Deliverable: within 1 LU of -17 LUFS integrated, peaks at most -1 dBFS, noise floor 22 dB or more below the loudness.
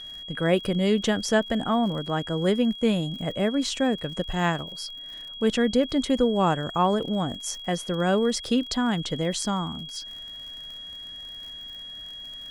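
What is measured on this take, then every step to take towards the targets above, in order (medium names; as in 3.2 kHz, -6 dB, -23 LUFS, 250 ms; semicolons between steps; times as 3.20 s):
tick rate 52 per s; steady tone 3.3 kHz; tone level -37 dBFS; loudness -25.5 LUFS; peak level -8.0 dBFS; loudness target -17.0 LUFS
-> de-click; band-stop 3.3 kHz, Q 30; trim +8.5 dB; peak limiter -1 dBFS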